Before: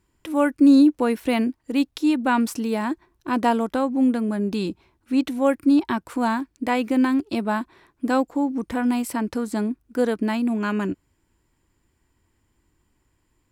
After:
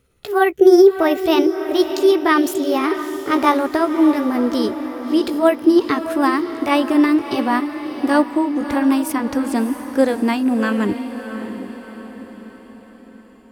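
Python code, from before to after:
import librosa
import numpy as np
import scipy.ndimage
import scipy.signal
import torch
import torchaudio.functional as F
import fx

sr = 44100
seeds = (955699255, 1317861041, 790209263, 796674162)

y = fx.pitch_glide(x, sr, semitones=5.0, runs='ending unshifted')
y = fx.echo_diffused(y, sr, ms=638, feedback_pct=50, wet_db=-10)
y = F.gain(torch.from_numpy(y), 6.0).numpy()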